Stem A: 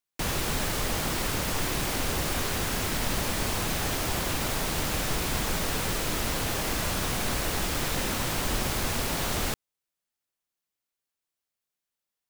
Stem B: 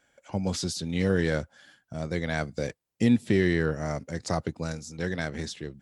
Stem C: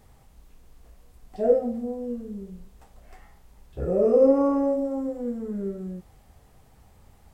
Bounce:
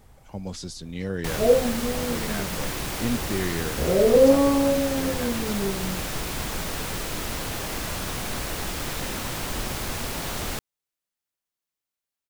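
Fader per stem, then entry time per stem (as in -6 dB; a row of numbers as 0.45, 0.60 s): -1.5, -5.5, +2.0 dB; 1.05, 0.00, 0.00 s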